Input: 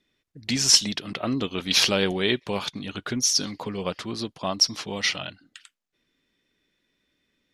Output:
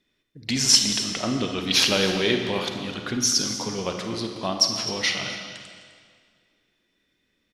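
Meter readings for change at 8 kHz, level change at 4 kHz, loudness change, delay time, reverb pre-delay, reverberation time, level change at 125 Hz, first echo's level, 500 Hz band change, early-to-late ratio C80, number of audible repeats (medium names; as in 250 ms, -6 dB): +1.0 dB, +1.5 dB, +1.0 dB, 256 ms, 34 ms, 2.0 s, +1.5 dB, -14.0 dB, +1.5 dB, 5.5 dB, 1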